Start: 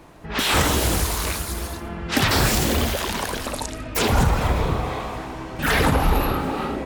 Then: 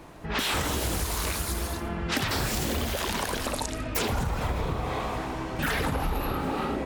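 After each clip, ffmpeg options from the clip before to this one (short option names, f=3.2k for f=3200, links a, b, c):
-af "acompressor=threshold=-25dB:ratio=6"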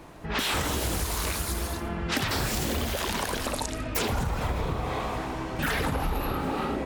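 -af anull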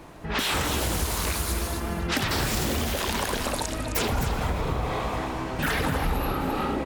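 -af "aecho=1:1:262:0.355,volume=1.5dB"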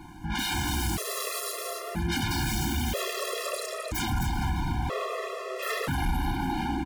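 -filter_complex "[0:a]asoftclip=type=hard:threshold=-25dB,asplit=2[a][b];[b]adelay=29,volume=-11dB[c];[a][c]amix=inputs=2:normalize=0,afftfilt=real='re*gt(sin(2*PI*0.51*pts/sr)*(1-2*mod(floor(b*sr/1024/350),2)),0)':imag='im*gt(sin(2*PI*0.51*pts/sr)*(1-2*mod(floor(b*sr/1024/350),2)),0)':win_size=1024:overlap=0.75,volume=1.5dB"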